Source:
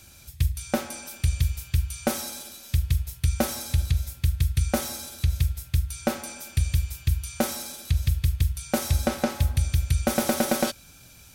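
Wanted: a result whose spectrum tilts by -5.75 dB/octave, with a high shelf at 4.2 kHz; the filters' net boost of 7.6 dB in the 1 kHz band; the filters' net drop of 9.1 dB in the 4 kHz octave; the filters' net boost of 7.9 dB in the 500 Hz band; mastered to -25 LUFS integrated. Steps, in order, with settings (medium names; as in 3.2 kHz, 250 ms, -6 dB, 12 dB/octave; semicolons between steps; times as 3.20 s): peaking EQ 500 Hz +7 dB; peaking EQ 1 kHz +8.5 dB; peaking EQ 4 kHz -8 dB; treble shelf 4.2 kHz -7 dB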